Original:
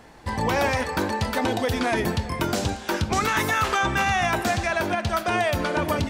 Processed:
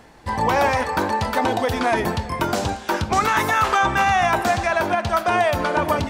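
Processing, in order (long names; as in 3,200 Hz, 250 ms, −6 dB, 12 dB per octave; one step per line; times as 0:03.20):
dynamic equaliser 910 Hz, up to +7 dB, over −37 dBFS, Q 0.91
reversed playback
upward compression, threshold −35 dBFS
reversed playback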